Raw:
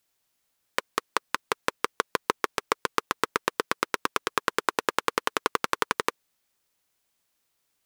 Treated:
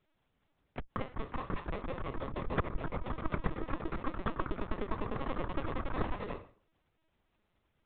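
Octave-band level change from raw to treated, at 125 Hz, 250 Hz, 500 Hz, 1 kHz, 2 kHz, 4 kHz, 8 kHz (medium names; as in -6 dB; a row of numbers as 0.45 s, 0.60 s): +10.0 dB, -0.5 dB, -7.5 dB, -11.5 dB, -15.0 dB, -19.5 dB, under -40 dB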